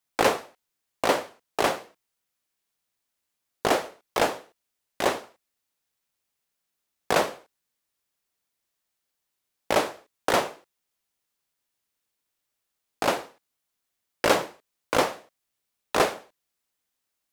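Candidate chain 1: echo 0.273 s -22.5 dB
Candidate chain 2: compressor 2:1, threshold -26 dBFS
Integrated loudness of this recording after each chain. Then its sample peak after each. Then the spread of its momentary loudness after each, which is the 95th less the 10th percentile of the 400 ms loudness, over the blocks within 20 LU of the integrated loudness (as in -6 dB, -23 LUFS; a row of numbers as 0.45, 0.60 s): -27.0, -31.5 LUFS; -7.5, -9.0 dBFS; 16, 11 LU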